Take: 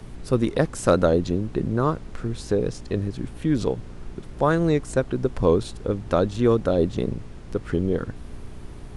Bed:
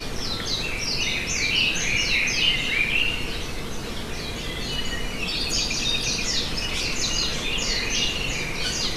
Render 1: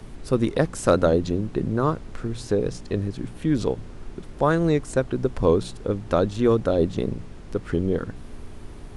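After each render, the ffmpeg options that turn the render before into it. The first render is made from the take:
-af "bandreject=f=60:t=h:w=4,bandreject=f=120:t=h:w=4,bandreject=f=180:t=h:w=4"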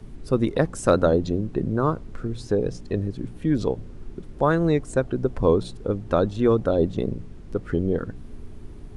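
-af "afftdn=nr=8:nf=-40"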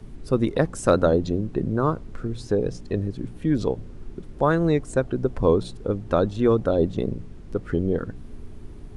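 -af anull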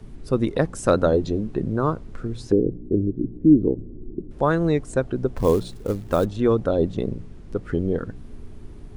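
-filter_complex "[0:a]asettb=1/sr,asplit=3[a][b][c];[a]atrim=end=1.124[d];[b]atrim=start=1.12:end=1.57,asetpts=PTS-STARTPTS,afade=t=in:d=0.004:c=qsin,afade=t=out:st=0.446:d=0.004:c=qsin,asplit=2[e][f];[f]adelay=14,volume=-8dB[g];[e][g]amix=inputs=2:normalize=0,atrim=end_sample=19845[h];[c]atrim=start=1.566[i];[d][h]acrossfade=d=0.004:c1=hsin:c2=qsin[j];[j][i]acrossfade=d=0.004:c1=qsin:c2=hsin,asettb=1/sr,asplit=3[k][l][m];[k]atrim=end=2.524[n];[l]atrim=start=2.52:end=4.31,asetpts=PTS-STARTPTS,afade=t=in:d=0.004:c=qsin,afade=t=out:st=1.786:d=0.004:c=qsin,lowpass=f=330:t=q:w=3.1[o];[m]atrim=start=4.306[p];[n][o]acrossfade=d=0.004:c1=hsin:c2=qsin[q];[q][p]acrossfade=d=0.004:c1=qsin:c2=hsin,asplit=3[r][s][t];[r]afade=t=out:st=5.35:d=0.02[u];[s]acrusher=bits=6:mode=log:mix=0:aa=0.000001,afade=t=in:st=5.35:d=0.02,afade=t=out:st=6.24:d=0.02[v];[t]afade=t=in:st=6.24:d=0.02[w];[u][v][w]amix=inputs=3:normalize=0"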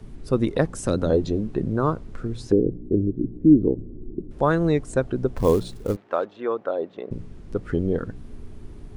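-filter_complex "[0:a]asettb=1/sr,asplit=3[a][b][c];[a]atrim=end=0.684[d];[b]atrim=start=0.68:end=1.1,asetpts=PTS-STARTPTS,afade=t=in:d=0.004:c=qsin,afade=t=out:st=0.416:d=0.004:c=qsin,acrossover=split=400|3000[e][f][g];[f]acompressor=threshold=-31dB:ratio=3:attack=3.2:release=140:knee=2.83:detection=peak[h];[e][h][g]amix=inputs=3:normalize=0[i];[c]atrim=start=1.096[j];[d][i]acrossfade=d=0.004:c1=hsin:c2=qsin[k];[k][j]acrossfade=d=0.004:c1=qsin:c2=hsin,asplit=3[l][m][n];[l]afade=t=out:st=5.95:d=0.02[o];[m]highpass=570,lowpass=2.2k,afade=t=in:st=5.95:d=0.02,afade=t=out:st=7.1:d=0.02[p];[n]afade=t=in:st=7.1:d=0.02[q];[o][p][q]amix=inputs=3:normalize=0"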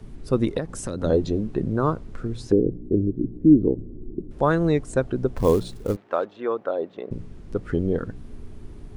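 -filter_complex "[0:a]asettb=1/sr,asplit=3[a][b][c];[a]atrim=end=0.584[d];[b]atrim=start=0.58:end=1.04,asetpts=PTS-STARTPTS,afade=t=in:d=0.004:c=qsin,afade=t=out:st=0.456:d=0.004:c=qsin,acompressor=threshold=-25dB:ratio=4:attack=3.2:release=140:knee=1:detection=peak[e];[c]atrim=start=1.036[f];[d][e]acrossfade=d=0.004:c1=hsin:c2=qsin[g];[g][f]acrossfade=d=0.004:c1=qsin:c2=hsin"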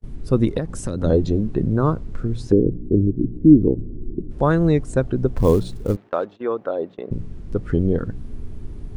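-af "lowshelf=f=250:g=8,agate=range=-35dB:threshold=-36dB:ratio=16:detection=peak"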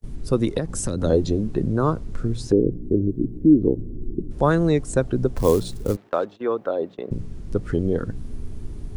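-filter_complex "[0:a]acrossover=split=300|4400[a][b][c];[a]alimiter=limit=-16.5dB:level=0:latency=1:release=253[d];[c]acontrast=87[e];[d][b][e]amix=inputs=3:normalize=0"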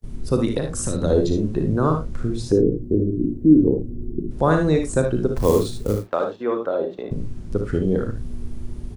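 -filter_complex "[0:a]asplit=2[a][b];[b]adelay=38,volume=-11.5dB[c];[a][c]amix=inputs=2:normalize=0,aecho=1:1:58|75:0.422|0.376"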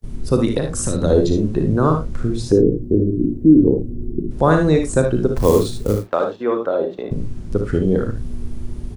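-af "volume=3.5dB,alimiter=limit=-2dB:level=0:latency=1"

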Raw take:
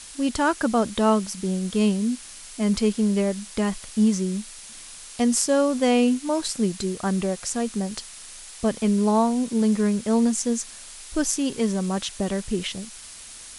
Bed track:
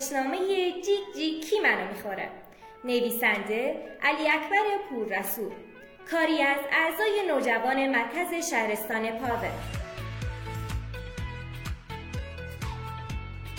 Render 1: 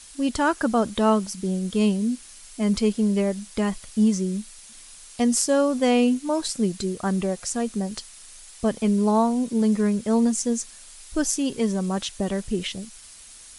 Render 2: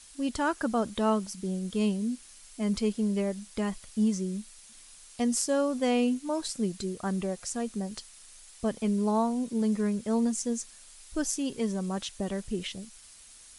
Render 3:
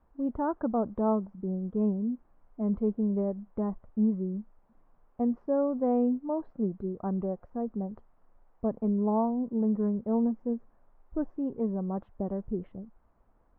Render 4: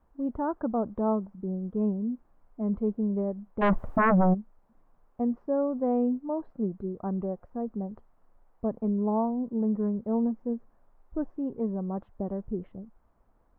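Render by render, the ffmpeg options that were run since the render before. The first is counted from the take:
-af "afftdn=nr=6:nf=-42"
-af "volume=-6.5dB"
-af "lowpass=f=1k:w=0.5412,lowpass=f=1k:w=1.3066"
-filter_complex "[0:a]asplit=3[a][b][c];[a]afade=t=out:st=3.61:d=0.02[d];[b]aeval=exprs='0.126*sin(PI/2*5.01*val(0)/0.126)':c=same,afade=t=in:st=3.61:d=0.02,afade=t=out:st=4.33:d=0.02[e];[c]afade=t=in:st=4.33:d=0.02[f];[d][e][f]amix=inputs=3:normalize=0"

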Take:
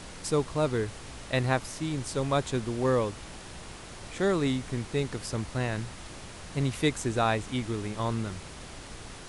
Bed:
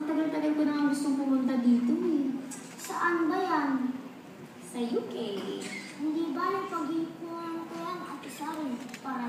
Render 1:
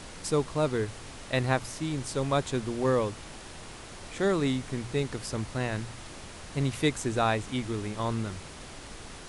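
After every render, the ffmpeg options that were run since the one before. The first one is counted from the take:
-af "bandreject=f=60:t=h:w=4,bandreject=f=120:t=h:w=4,bandreject=f=180:t=h:w=4"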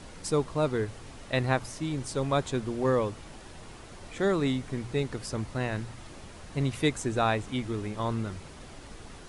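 -af "afftdn=nr=6:nf=-45"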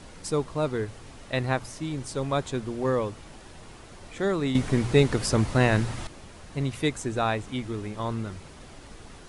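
-filter_complex "[0:a]asplit=3[a][b][c];[a]atrim=end=4.552[d];[b]atrim=start=4.548:end=6.072,asetpts=PTS-STARTPTS,volume=10dB[e];[c]atrim=start=6.068[f];[d][e]acrossfade=d=0.004:c1=hsin:c2=hsin[g];[g][f]acrossfade=d=0.004:c1=hsin:c2=hsin"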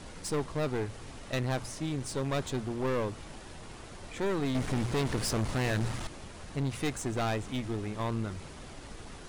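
-filter_complex "[0:a]aeval=exprs='(tanh(20*val(0)+0.55)-tanh(0.55))/20':c=same,asplit=2[a][b];[b]aeval=exprs='0.0112*(abs(mod(val(0)/0.0112+3,4)-2)-1)':c=same,volume=-8.5dB[c];[a][c]amix=inputs=2:normalize=0"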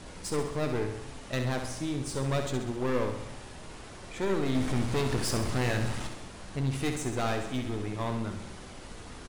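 -filter_complex "[0:a]asplit=2[a][b];[b]adelay=16,volume=-11.5dB[c];[a][c]amix=inputs=2:normalize=0,asplit=2[d][e];[e]aecho=0:1:66|132|198|264|330|396|462:0.447|0.255|0.145|0.0827|0.0472|0.0269|0.0153[f];[d][f]amix=inputs=2:normalize=0"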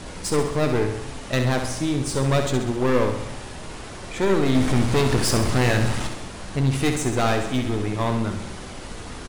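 -af "volume=9dB"

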